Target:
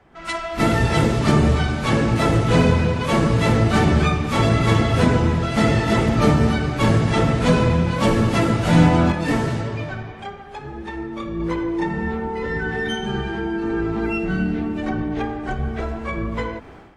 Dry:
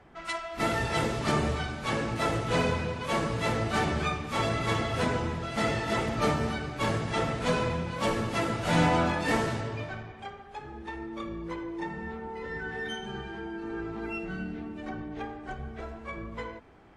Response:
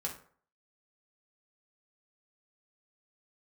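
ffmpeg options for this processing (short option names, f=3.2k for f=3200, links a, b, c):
-filter_complex "[0:a]acrossover=split=340[a][b];[b]acompressor=threshold=-49dB:ratio=1.5[c];[a][c]amix=inputs=2:normalize=0,asettb=1/sr,asplit=3[d][e][f];[d]atrim=end=9.124[g];[e]atrim=start=9.12:end=11.4,asetpts=PTS-STARTPTS,afade=t=in:d=0.004:c=qsin,afade=t=out:st=2.276:d=0.004:c=qsin,flanger=delay=4.9:depth=3.1:regen=66:speed=1.7:shape=triangular[h];[f]atrim=start=11.396[i];[g][h]acrossfade=d=0.004:c1=hsin:c2=qsin[j];[j][i]acrossfade=d=0.004:c1=qsin:c2=hsin,dynaudnorm=f=100:g=5:m=14dB,volume=1dB"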